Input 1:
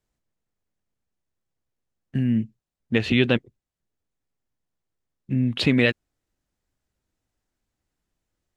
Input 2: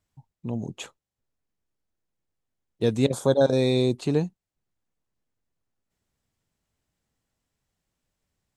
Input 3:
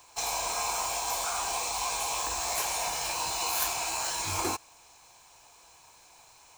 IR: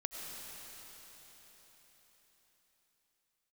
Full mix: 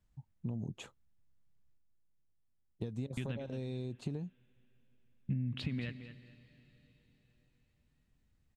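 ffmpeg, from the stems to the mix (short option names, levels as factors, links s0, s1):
-filter_complex "[0:a]equalizer=f=440:t=o:w=1.3:g=-6,acompressor=threshold=0.0316:ratio=6,volume=0.668,asplit=3[s0][s1][s2];[s0]atrim=end=1.78,asetpts=PTS-STARTPTS,afade=t=out:st=1.776:d=0.004:c=hsin[s3];[s1]atrim=start=1.78:end=3.17,asetpts=PTS-STARTPTS,volume=0[s4];[s2]atrim=start=3.17,asetpts=PTS-STARTPTS,afade=t=in:d=0.004:c=hsin[s5];[s3][s4][s5]concat=n=3:v=0:a=1,asplit=3[s6][s7][s8];[s7]volume=0.0841[s9];[s8]volume=0.112[s10];[1:a]acompressor=threshold=0.0562:ratio=6,volume=0.355[s11];[s6][s11]amix=inputs=2:normalize=0,acompressor=threshold=0.00891:ratio=6,volume=1[s12];[3:a]atrim=start_sample=2205[s13];[s9][s13]afir=irnorm=-1:irlink=0[s14];[s10]aecho=0:1:219|438|657|876:1|0.25|0.0625|0.0156[s15];[s12][s14][s15]amix=inputs=3:normalize=0,bass=f=250:g=10,treble=f=4000:g=-4"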